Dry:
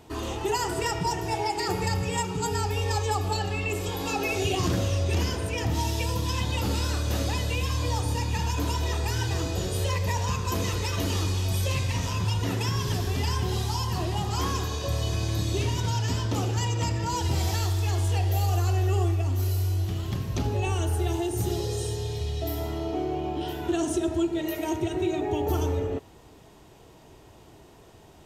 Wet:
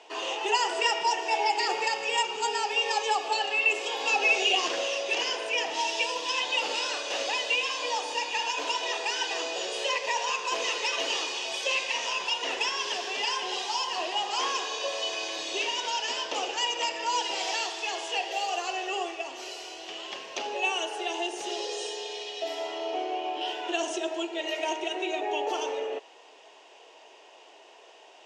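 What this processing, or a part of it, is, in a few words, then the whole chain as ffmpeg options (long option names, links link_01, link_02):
phone speaker on a table: -af "highpass=frequency=490:width=0.5412,highpass=frequency=490:width=1.3066,equalizer=frequency=1300:width_type=q:width=4:gain=-6,equalizer=frequency=2800:width_type=q:width=4:gain=8,equalizer=frequency=4100:width_type=q:width=4:gain=-3,lowpass=frequency=6600:width=0.5412,lowpass=frequency=6600:width=1.3066,volume=3.5dB"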